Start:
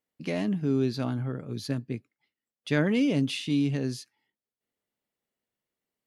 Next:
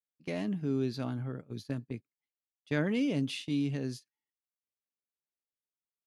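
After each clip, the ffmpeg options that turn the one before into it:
-af "agate=range=0.178:threshold=0.0178:ratio=16:detection=peak,volume=0.531"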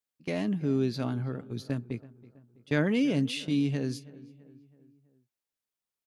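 -filter_complex "[0:a]asplit=2[s0][s1];[s1]adelay=327,lowpass=f=2100:p=1,volume=0.106,asplit=2[s2][s3];[s3]adelay=327,lowpass=f=2100:p=1,volume=0.54,asplit=2[s4][s5];[s5]adelay=327,lowpass=f=2100:p=1,volume=0.54,asplit=2[s6][s7];[s7]adelay=327,lowpass=f=2100:p=1,volume=0.54[s8];[s0][s2][s4][s6][s8]amix=inputs=5:normalize=0,volume=1.58"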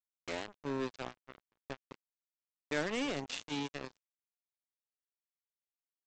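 -af "highpass=390,aresample=16000,acrusher=bits=4:mix=0:aa=0.5,aresample=44100,volume=0.596"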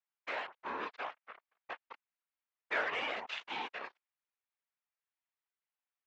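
-af "asuperpass=centerf=1400:order=4:qfactor=0.71,afftfilt=real='hypot(re,im)*cos(2*PI*random(0))':imag='hypot(re,im)*sin(2*PI*random(1))':win_size=512:overlap=0.75,volume=3.76"

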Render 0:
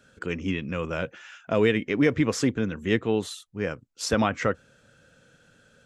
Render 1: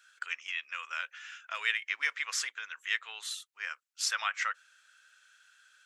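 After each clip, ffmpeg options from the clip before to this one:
-af "highpass=f=1300:w=0.5412,highpass=f=1300:w=1.3066"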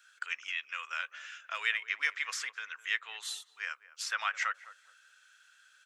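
-filter_complex "[0:a]acrossover=split=840|1800|2700[s0][s1][s2][s3];[s3]alimiter=level_in=1.58:limit=0.0631:level=0:latency=1:release=387,volume=0.631[s4];[s0][s1][s2][s4]amix=inputs=4:normalize=0,asplit=2[s5][s6];[s6]adelay=209,lowpass=f=880:p=1,volume=0.224,asplit=2[s7][s8];[s8]adelay=209,lowpass=f=880:p=1,volume=0.31,asplit=2[s9][s10];[s10]adelay=209,lowpass=f=880:p=1,volume=0.31[s11];[s5][s7][s9][s11]amix=inputs=4:normalize=0"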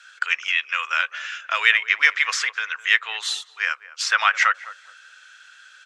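-af "highpass=330,lowpass=6300,acontrast=85,volume=2.37"

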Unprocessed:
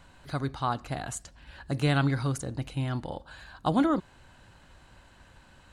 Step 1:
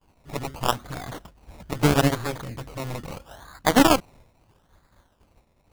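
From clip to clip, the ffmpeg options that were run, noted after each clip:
-af "acrusher=samples=22:mix=1:aa=0.000001:lfo=1:lforange=13.2:lforate=0.77,aeval=exprs='0.237*(cos(1*acos(clip(val(0)/0.237,-1,1)))-cos(1*PI/2))+0.0211*(cos(5*acos(clip(val(0)/0.237,-1,1)))-cos(5*PI/2))+0.0596*(cos(6*acos(clip(val(0)/0.237,-1,1)))-cos(6*PI/2))+0.075*(cos(7*acos(clip(val(0)/0.237,-1,1)))-cos(7*PI/2))+0.0473*(cos(8*acos(clip(val(0)/0.237,-1,1)))-cos(8*PI/2))':c=same,agate=range=0.0224:threshold=0.00355:ratio=3:detection=peak,volume=1.88"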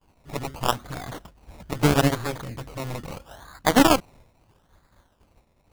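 -af anull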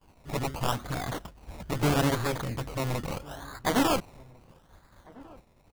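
-filter_complex "[0:a]asoftclip=type=tanh:threshold=0.0891,asplit=2[s0][s1];[s1]adelay=1399,volume=0.0708,highshelf=f=4000:g=-31.5[s2];[s0][s2]amix=inputs=2:normalize=0,volume=1.33"

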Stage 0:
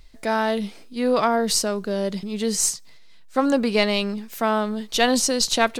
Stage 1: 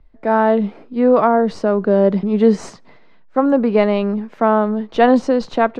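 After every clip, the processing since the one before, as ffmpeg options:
-filter_complex "[0:a]lowpass=1200,acrossover=split=140[s0][s1];[s1]dynaudnorm=f=170:g=3:m=6.68[s2];[s0][s2]amix=inputs=2:normalize=0,volume=0.891"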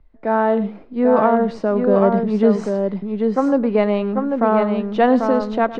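-filter_complex "[0:a]lowpass=f=3500:p=1,asplit=2[s0][s1];[s1]aecho=0:1:107|792:0.158|0.596[s2];[s0][s2]amix=inputs=2:normalize=0,volume=0.75"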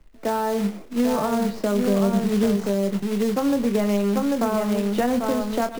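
-filter_complex "[0:a]acrusher=bits=3:mode=log:mix=0:aa=0.000001,asplit=2[s0][s1];[s1]adelay=25,volume=0.422[s2];[s0][s2]amix=inputs=2:normalize=0,acrossover=split=190[s3][s4];[s4]acompressor=threshold=0.0891:ratio=6[s5];[s3][s5]amix=inputs=2:normalize=0"

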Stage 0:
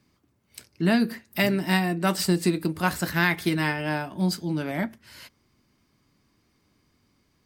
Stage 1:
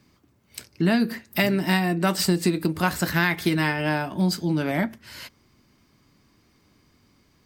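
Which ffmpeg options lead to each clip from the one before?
-af "equalizer=f=9900:w=3.9:g=-4,acompressor=threshold=0.0447:ratio=2,volume=2"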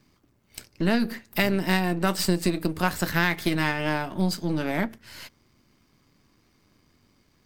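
-af "aeval=exprs='if(lt(val(0),0),0.447*val(0),val(0))':c=same"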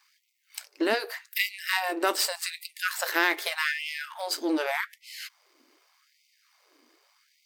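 -filter_complex "[0:a]asplit=2[s0][s1];[s1]alimiter=limit=0.158:level=0:latency=1:release=468,volume=0.891[s2];[s0][s2]amix=inputs=2:normalize=0,afftfilt=real='re*gte(b*sr/1024,250*pow(2000/250,0.5+0.5*sin(2*PI*0.84*pts/sr)))':imag='im*gte(b*sr/1024,250*pow(2000/250,0.5+0.5*sin(2*PI*0.84*pts/sr)))':win_size=1024:overlap=0.75,volume=0.794"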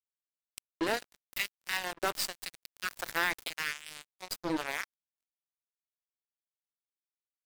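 -af "acrusher=bits=3:mix=0:aa=0.5,volume=0.473"

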